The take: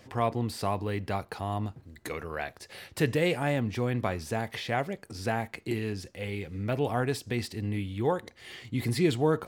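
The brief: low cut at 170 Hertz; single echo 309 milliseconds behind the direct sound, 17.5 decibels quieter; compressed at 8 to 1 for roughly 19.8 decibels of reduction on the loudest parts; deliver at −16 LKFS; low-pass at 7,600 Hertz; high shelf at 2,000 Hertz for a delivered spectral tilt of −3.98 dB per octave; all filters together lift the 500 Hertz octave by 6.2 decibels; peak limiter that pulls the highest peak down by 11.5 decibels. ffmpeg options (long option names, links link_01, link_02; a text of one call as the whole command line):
ffmpeg -i in.wav -af "highpass=170,lowpass=7600,equalizer=frequency=500:width_type=o:gain=7,highshelf=frequency=2000:gain=6.5,acompressor=threshold=-37dB:ratio=8,alimiter=level_in=10.5dB:limit=-24dB:level=0:latency=1,volume=-10.5dB,aecho=1:1:309:0.133,volume=28.5dB" out.wav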